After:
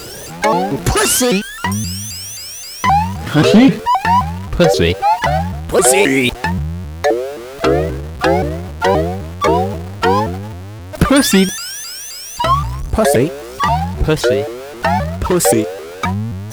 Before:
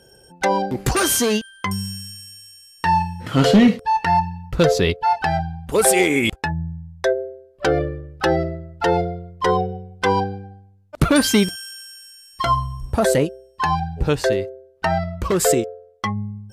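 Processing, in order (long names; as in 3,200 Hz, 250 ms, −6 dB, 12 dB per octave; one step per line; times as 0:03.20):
converter with a step at zero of −29.5 dBFS
pitch modulation by a square or saw wave saw up 3.8 Hz, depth 250 cents
level +4.5 dB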